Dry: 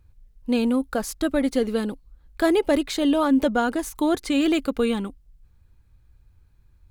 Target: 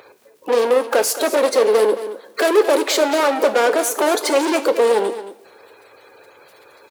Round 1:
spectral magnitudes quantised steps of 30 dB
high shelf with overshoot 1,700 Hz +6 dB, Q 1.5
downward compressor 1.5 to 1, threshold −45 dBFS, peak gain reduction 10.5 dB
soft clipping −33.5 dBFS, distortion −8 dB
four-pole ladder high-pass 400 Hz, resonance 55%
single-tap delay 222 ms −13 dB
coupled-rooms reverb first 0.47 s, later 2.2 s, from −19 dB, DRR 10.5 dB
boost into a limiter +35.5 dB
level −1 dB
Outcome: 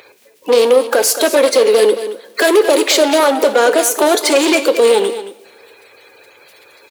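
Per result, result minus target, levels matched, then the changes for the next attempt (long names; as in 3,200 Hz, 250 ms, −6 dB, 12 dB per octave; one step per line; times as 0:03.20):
4,000 Hz band +3.0 dB; soft clipping: distortion −4 dB
remove: high shelf with overshoot 1,700 Hz +6 dB, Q 1.5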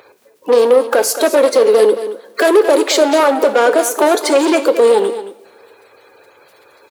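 soft clipping: distortion −5 dB
change: soft clipping −41 dBFS, distortion −4 dB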